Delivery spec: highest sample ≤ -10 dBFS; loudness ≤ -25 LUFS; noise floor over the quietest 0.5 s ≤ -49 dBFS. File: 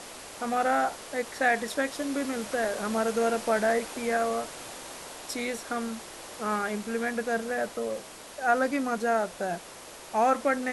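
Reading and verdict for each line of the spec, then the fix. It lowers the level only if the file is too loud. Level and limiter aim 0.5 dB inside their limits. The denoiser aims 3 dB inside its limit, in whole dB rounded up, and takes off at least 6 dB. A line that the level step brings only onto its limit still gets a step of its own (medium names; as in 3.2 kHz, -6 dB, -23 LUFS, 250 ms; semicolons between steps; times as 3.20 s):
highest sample -12.0 dBFS: pass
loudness -29.0 LUFS: pass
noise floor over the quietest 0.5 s -45 dBFS: fail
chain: noise reduction 7 dB, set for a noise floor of -45 dBFS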